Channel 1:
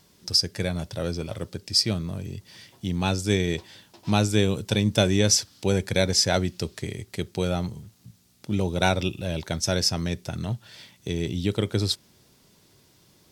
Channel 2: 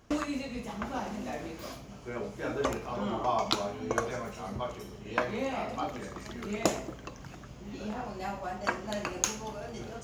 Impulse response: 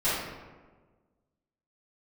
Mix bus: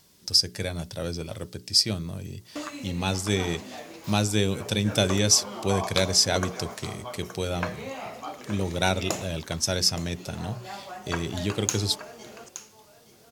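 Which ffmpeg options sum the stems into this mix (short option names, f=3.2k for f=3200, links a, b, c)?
-filter_complex "[0:a]bandreject=f=60:t=h:w=6,bandreject=f=120:t=h:w=6,bandreject=f=180:t=h:w=6,bandreject=f=240:t=h:w=6,bandreject=f=300:t=h:w=6,bandreject=f=360:t=h:w=6,bandreject=f=420:t=h:w=6,volume=-2.5dB[a];[1:a]highpass=f=340:p=1,adelay=2450,volume=-2dB,asplit=2[b][c];[c]volume=-12.5dB,aecho=0:1:871:1[d];[a][b][d]amix=inputs=3:normalize=0,highshelf=f=4.5k:g=6"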